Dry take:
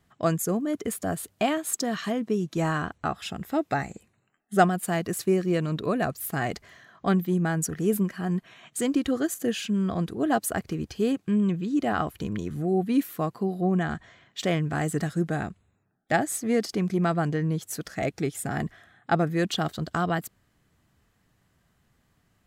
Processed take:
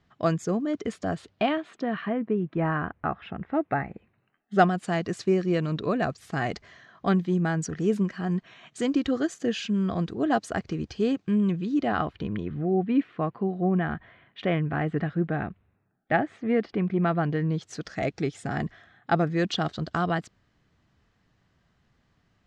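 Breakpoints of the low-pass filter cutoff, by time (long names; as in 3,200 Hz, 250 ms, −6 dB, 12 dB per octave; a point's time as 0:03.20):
low-pass filter 24 dB per octave
0:01.10 5,600 Hz
0:02.11 2,300 Hz
0:03.89 2,300 Hz
0:04.74 6,100 Hz
0:11.60 6,100 Hz
0:12.63 2,900 Hz
0:16.91 2,900 Hz
0:17.77 5,900 Hz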